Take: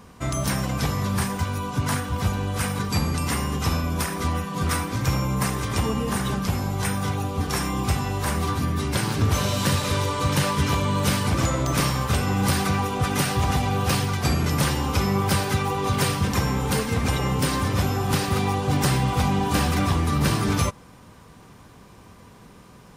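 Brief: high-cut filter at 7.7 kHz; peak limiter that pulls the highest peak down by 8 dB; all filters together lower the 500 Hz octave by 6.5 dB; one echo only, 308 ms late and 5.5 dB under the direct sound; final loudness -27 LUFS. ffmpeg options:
-af "lowpass=7700,equalizer=f=500:t=o:g=-8.5,alimiter=limit=0.106:level=0:latency=1,aecho=1:1:308:0.531"

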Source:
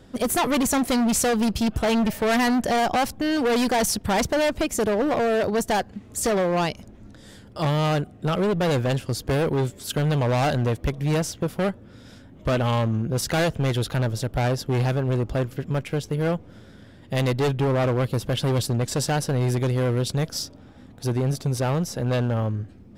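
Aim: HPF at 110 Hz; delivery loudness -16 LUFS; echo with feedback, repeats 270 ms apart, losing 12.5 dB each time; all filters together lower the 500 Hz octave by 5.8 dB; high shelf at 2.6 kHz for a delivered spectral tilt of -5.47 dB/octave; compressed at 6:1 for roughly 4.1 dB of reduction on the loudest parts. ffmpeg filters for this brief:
-af "highpass=110,equalizer=f=500:t=o:g=-7,highshelf=f=2600:g=-5.5,acompressor=threshold=0.0562:ratio=6,aecho=1:1:270|540|810:0.237|0.0569|0.0137,volume=5.01"

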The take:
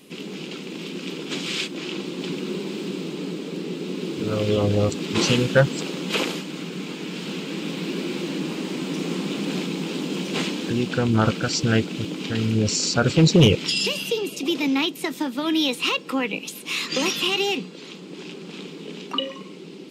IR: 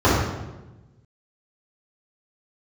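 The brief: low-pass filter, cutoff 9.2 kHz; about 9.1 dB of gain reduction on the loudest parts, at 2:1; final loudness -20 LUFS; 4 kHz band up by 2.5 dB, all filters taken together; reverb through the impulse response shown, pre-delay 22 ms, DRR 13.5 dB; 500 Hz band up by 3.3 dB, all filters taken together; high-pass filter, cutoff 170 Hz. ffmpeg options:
-filter_complex "[0:a]highpass=170,lowpass=9200,equalizer=f=500:t=o:g=4,equalizer=f=4000:t=o:g=3.5,acompressor=threshold=0.0562:ratio=2,asplit=2[s0][s1];[1:a]atrim=start_sample=2205,adelay=22[s2];[s1][s2]afir=irnorm=-1:irlink=0,volume=0.0133[s3];[s0][s3]amix=inputs=2:normalize=0,volume=2.11"

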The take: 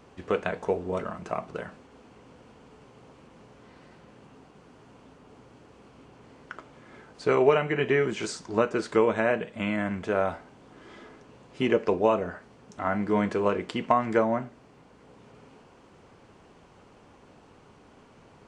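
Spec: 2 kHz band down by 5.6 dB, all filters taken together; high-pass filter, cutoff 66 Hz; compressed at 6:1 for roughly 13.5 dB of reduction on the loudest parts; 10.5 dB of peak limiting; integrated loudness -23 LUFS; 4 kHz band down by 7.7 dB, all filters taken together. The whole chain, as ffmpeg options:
-af "highpass=66,equalizer=f=2000:t=o:g=-5.5,equalizer=f=4000:t=o:g=-9,acompressor=threshold=0.0251:ratio=6,volume=7.08,alimiter=limit=0.299:level=0:latency=1"

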